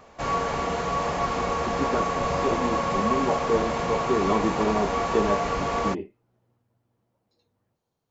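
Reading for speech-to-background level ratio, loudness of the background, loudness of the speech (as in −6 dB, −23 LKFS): −2.0 dB, −26.5 LKFS, −28.5 LKFS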